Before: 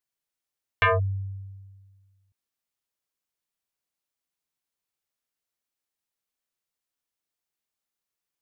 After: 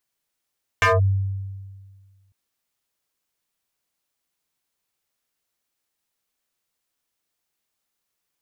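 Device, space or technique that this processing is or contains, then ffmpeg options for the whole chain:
clipper into limiter: -af "asoftclip=type=hard:threshold=-19dB,alimiter=limit=-23dB:level=0:latency=1,volume=8dB"

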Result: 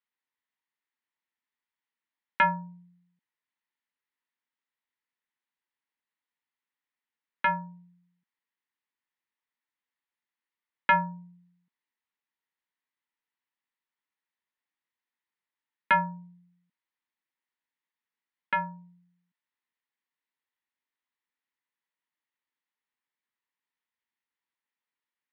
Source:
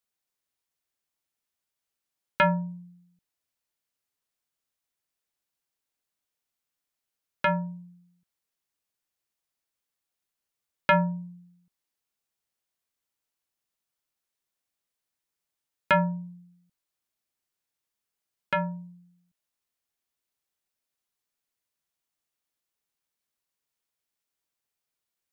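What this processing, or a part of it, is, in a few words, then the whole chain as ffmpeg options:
kitchen radio: -af "highpass=220,equalizer=frequency=240:width_type=q:width=4:gain=4,equalizer=frequency=400:width_type=q:width=4:gain=-4,equalizer=frequency=640:width_type=q:width=4:gain=-10,equalizer=frequency=940:width_type=q:width=4:gain=7,equalizer=frequency=1900:width_type=q:width=4:gain=9,lowpass=frequency=3800:width=0.5412,lowpass=frequency=3800:width=1.3066,volume=-4dB"

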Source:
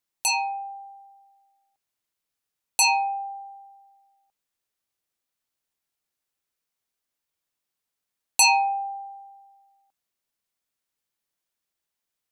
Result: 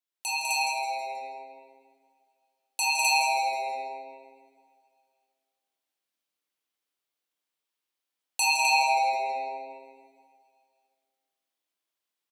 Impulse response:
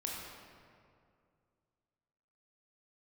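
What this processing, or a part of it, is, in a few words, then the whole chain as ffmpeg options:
stadium PA: -filter_complex "[0:a]highpass=frequency=240:width=0.5412,highpass=frequency=240:width=1.3066,equalizer=frequency=3200:width_type=o:width=0.77:gain=4,aecho=1:1:201.2|256.6:0.708|1[link_01];[1:a]atrim=start_sample=2205[link_02];[link_01][link_02]afir=irnorm=-1:irlink=0,asettb=1/sr,asplit=3[link_03][link_04][link_05];[link_03]atrim=end=8.574[link_06];[link_04]atrim=start=8.57:end=9.26,asetpts=PTS-STARTPTS,afade=type=in:duration=0.004:curve=qsin,afade=type=out:start_time=0.686:duration=0.004:curve=qsin,aemphasis=mode=reproduction:type=cd[link_07];[link_05]atrim=start=9.256[link_08];[link_06][link_07]acrossfade=duration=0.004:curve1=hsin:curve2=qsin[link_09];[link_09][link_08]acrossfade=duration=0.004:curve1=qsin:curve2=hsin,asplit=5[link_10][link_11][link_12][link_13][link_14];[link_11]adelay=161,afreqshift=-130,volume=-10dB[link_15];[link_12]adelay=322,afreqshift=-260,volume=-17.7dB[link_16];[link_13]adelay=483,afreqshift=-390,volume=-25.5dB[link_17];[link_14]adelay=644,afreqshift=-520,volume=-33.2dB[link_18];[link_10][link_15][link_16][link_17][link_18]amix=inputs=5:normalize=0,volume=-7.5dB"

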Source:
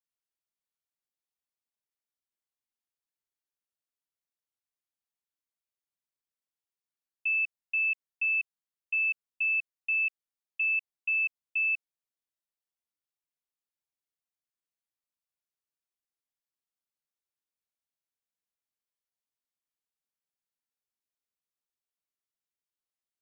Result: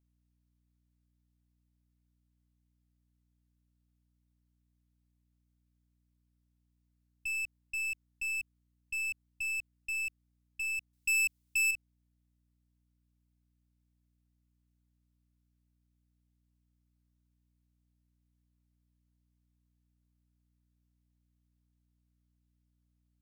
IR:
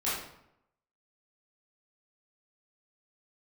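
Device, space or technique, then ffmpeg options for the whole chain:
valve amplifier with mains hum: -filter_complex "[0:a]aeval=exprs='(tanh(44.7*val(0)+0.3)-tanh(0.3))/44.7':channel_layout=same,aeval=exprs='val(0)+0.0002*(sin(2*PI*60*n/s)+sin(2*PI*2*60*n/s)/2+sin(2*PI*3*60*n/s)/3+sin(2*PI*4*60*n/s)/4+sin(2*PI*5*60*n/s)/5)':channel_layout=same,asettb=1/sr,asplit=3[link_01][link_02][link_03];[link_01]atrim=end=10.934[link_04];[link_02]atrim=start=10.93:end=11.71,asetpts=PTS-STARTPTS,afade=type=in:duration=0.004:curve=qsin,afade=type=out:start_time=0.776:duration=0.004:curve=qsin,highshelf=frequency=2400:gain=11.5[link_05];[link_03]atrim=start=11.706[link_06];[link_04][link_05]acrossfade=duration=0.004:curve1=hsin:curve2=qsin[link_07];[link_07][link_06]acrossfade=duration=0.004:curve1=qsin:curve2=hsin"

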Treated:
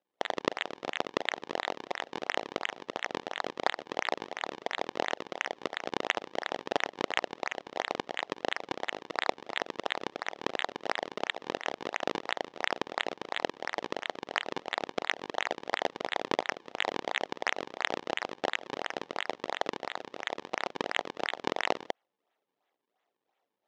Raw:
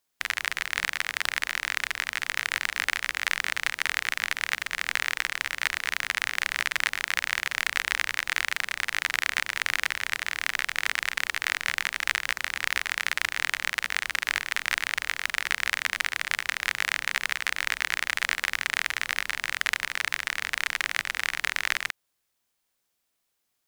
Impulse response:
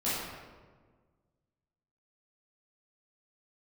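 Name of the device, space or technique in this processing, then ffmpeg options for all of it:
circuit-bent sampling toy: -af "acrusher=samples=38:mix=1:aa=0.000001:lfo=1:lforange=60.8:lforate=2.9,highpass=520,equalizer=frequency=750:width_type=q:width=4:gain=3,equalizer=frequency=1100:width_type=q:width=4:gain=-3,equalizer=frequency=1500:width_type=q:width=4:gain=-6,equalizer=frequency=2400:width_type=q:width=4:gain=-4,equalizer=frequency=4500:width_type=q:width=4:gain=-5,lowpass=frequency=5000:width=0.5412,lowpass=frequency=5000:width=1.3066"

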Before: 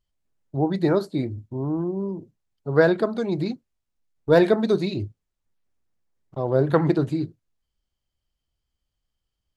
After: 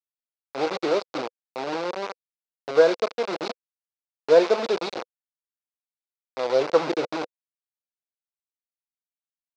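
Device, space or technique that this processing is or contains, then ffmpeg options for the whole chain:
hand-held game console: -af "acrusher=bits=3:mix=0:aa=0.000001,highpass=450,equalizer=frequency=500:width_type=q:width=4:gain=7,equalizer=frequency=1800:width_type=q:width=4:gain=-7,equalizer=frequency=3100:width_type=q:width=4:gain=-6,lowpass=frequency=4900:width=0.5412,lowpass=frequency=4900:width=1.3066,volume=-1.5dB"

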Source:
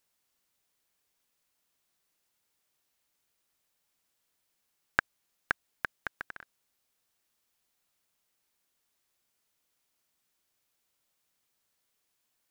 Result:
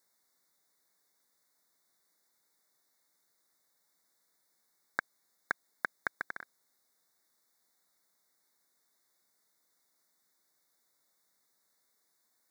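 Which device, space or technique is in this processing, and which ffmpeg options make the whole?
PA system with an anti-feedback notch: -af "highpass=170,asuperstop=centerf=2800:order=20:qfactor=2.3,alimiter=limit=-17.5dB:level=0:latency=1:release=35,volume=3dB"

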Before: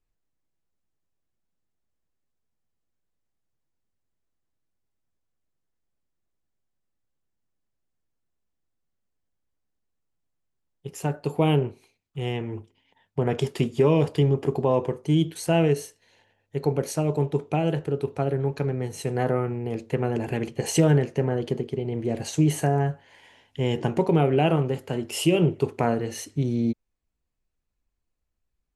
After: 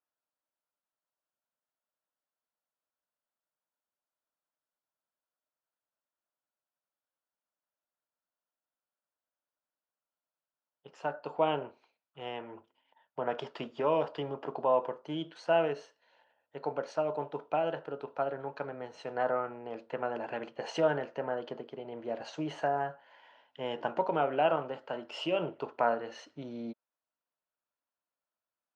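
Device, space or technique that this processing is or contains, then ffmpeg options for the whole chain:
phone earpiece: -af "highpass=390,equalizer=frequency=390:width_type=q:width=4:gain=-8,equalizer=frequency=610:width_type=q:width=4:gain=7,equalizer=frequency=960:width_type=q:width=4:gain=6,equalizer=frequency=1400:width_type=q:width=4:gain=8,equalizer=frequency=2200:width_type=q:width=4:gain=-6,equalizer=frequency=3800:width_type=q:width=4:gain=-4,lowpass=frequency=4300:width=0.5412,lowpass=frequency=4300:width=1.3066,volume=-6dB"

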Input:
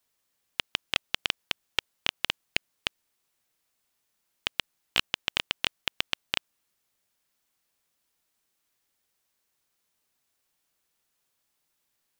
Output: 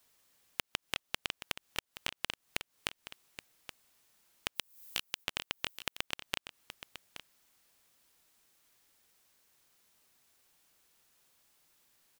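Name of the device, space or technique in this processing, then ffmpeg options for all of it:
serial compression, peaks first: -filter_complex "[0:a]asplit=3[link_01][link_02][link_03];[link_01]afade=type=out:start_time=4.55:duration=0.02[link_04];[link_02]aemphasis=mode=production:type=75fm,afade=type=in:start_time=4.55:duration=0.02,afade=type=out:start_time=5.23:duration=0.02[link_05];[link_03]afade=type=in:start_time=5.23:duration=0.02[link_06];[link_04][link_05][link_06]amix=inputs=3:normalize=0,acompressor=threshold=-33dB:ratio=6,acompressor=threshold=-40dB:ratio=2.5,aecho=1:1:824:0.251,volume=7dB"

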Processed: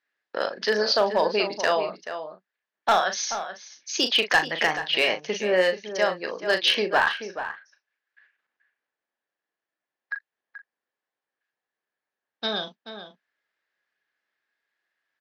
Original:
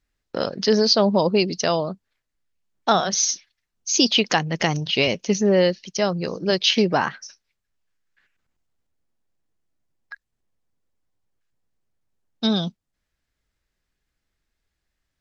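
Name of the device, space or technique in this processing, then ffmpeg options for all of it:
megaphone: -filter_complex "[0:a]highpass=530,lowpass=3600,equalizer=frequency=1700:width_type=o:width=0.26:gain=9,asoftclip=type=hard:threshold=-12.5dB,asplit=2[link_01][link_02];[link_02]adelay=38,volume=-8.5dB[link_03];[link_01][link_03]amix=inputs=2:normalize=0,asplit=2[link_04][link_05];[link_05]adelay=431.5,volume=-10dB,highshelf=frequency=4000:gain=-9.71[link_06];[link_04][link_06]amix=inputs=2:normalize=0"

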